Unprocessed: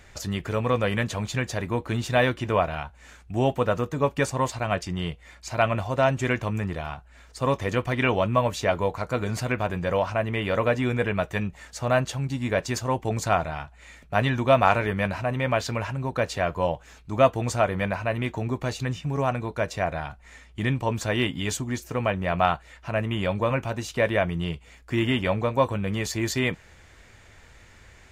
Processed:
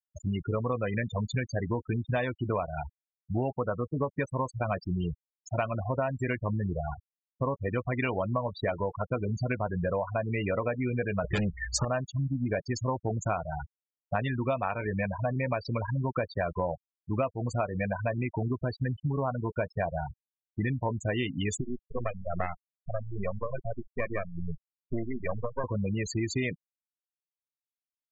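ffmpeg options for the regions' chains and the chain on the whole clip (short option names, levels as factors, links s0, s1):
-filter_complex "[0:a]asettb=1/sr,asplit=3[s0][s1][s2];[s0]atrim=end=11.244[s3];[s1]atrim=start=11.24:end=11.85,asetpts=PTS-STARTPTS,afade=t=in:d=0.004:c=qsin,afade=t=out:st=0.606:d=0.004:c=qsin,bandreject=f=750:w=5,aeval=exprs='0.178*sin(PI/2*2.82*val(0)/0.178)':c=same[s4];[s2]atrim=start=11.846[s5];[s3][s4]acrossfade=d=0.004:c1=hsin:c2=qsin[s6];[s6][s5]acrossfade=d=0.004:c1=qsin:c2=hsin,asettb=1/sr,asplit=3[s7][s8][s9];[s7]atrim=end=21.614[s10];[s8]atrim=start=21.61:end=25.64,asetpts=PTS-STARTPTS,afade=t=in:d=0.004:c=qsin,afade=t=out:st=4.026:d=0.004:c=qsin,aeval=exprs='max(val(0),0)':c=same,tremolo=f=2.4:d=0.44[s11];[s9]atrim=start=25.636[s12];[s10][s11]acrossfade=d=0.004:c1=hsin:c2=qsin[s13];[s13][s12]acrossfade=d=0.004:c1=qsin:c2=hsin,afftfilt=real='re*gte(hypot(re,im),0.0794)':imag='im*gte(hypot(re,im),0.0794)':win_size=1024:overlap=0.75,acompressor=threshold=0.0355:ratio=10,volume=1.41"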